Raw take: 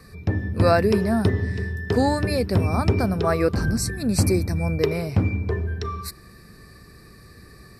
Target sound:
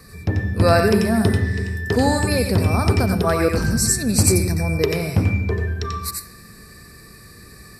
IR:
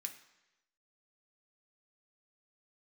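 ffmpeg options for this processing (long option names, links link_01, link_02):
-filter_complex "[0:a]highshelf=frequency=5400:gain=7.5,asplit=2[link_01][link_02];[1:a]atrim=start_sample=2205,adelay=89[link_03];[link_02][link_03]afir=irnorm=-1:irlink=0,volume=1dB[link_04];[link_01][link_04]amix=inputs=2:normalize=0,volume=1.5dB"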